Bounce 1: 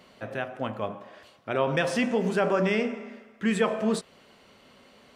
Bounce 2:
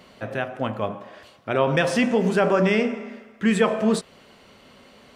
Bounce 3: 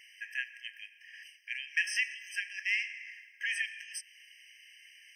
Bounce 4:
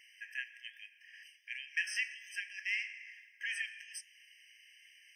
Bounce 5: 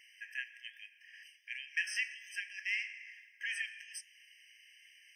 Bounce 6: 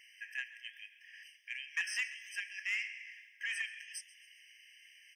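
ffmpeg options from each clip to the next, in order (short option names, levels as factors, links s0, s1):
-af "lowshelf=f=140:g=3.5,volume=1.68"
-filter_complex "[0:a]asplit=2[s0][s1];[s1]acompressor=threshold=0.0447:ratio=6,volume=1.33[s2];[s0][s2]amix=inputs=2:normalize=0,afftfilt=real='re*eq(mod(floor(b*sr/1024/1600),2),1)':imag='im*eq(mod(floor(b*sr/1024/1600),2),1)':win_size=1024:overlap=0.75,volume=0.501"
-af "flanger=delay=5.9:depth=3:regen=87:speed=1.2:shape=sinusoidal"
-af anull
-filter_complex "[0:a]asoftclip=type=tanh:threshold=0.0473,asplit=5[s0][s1][s2][s3][s4];[s1]adelay=134,afreqshift=88,volume=0.1[s5];[s2]adelay=268,afreqshift=176,volume=0.049[s6];[s3]adelay=402,afreqshift=264,volume=0.024[s7];[s4]adelay=536,afreqshift=352,volume=0.0117[s8];[s0][s5][s6][s7][s8]amix=inputs=5:normalize=0,volume=1.12"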